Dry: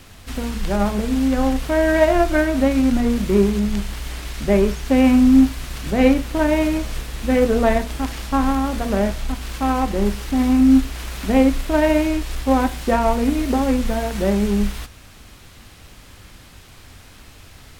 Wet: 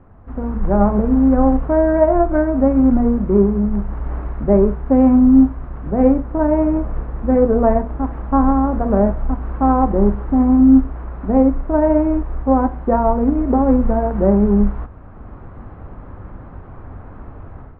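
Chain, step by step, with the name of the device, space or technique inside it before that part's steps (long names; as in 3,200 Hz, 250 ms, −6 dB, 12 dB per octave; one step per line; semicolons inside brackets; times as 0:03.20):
action camera in a waterproof case (low-pass filter 1,200 Hz 24 dB per octave; automatic gain control; level −1 dB; AAC 64 kbit/s 32,000 Hz)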